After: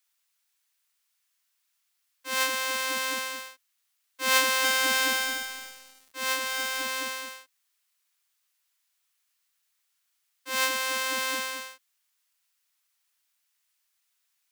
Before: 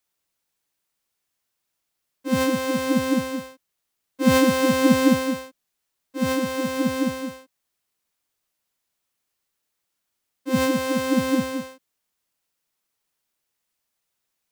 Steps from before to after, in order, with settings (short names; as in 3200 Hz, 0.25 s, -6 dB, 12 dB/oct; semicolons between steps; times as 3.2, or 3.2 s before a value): HPF 1300 Hz 12 dB/oct; 4.35–6.83 lo-fi delay 0.293 s, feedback 35%, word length 7-bit, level -8 dB; gain +3.5 dB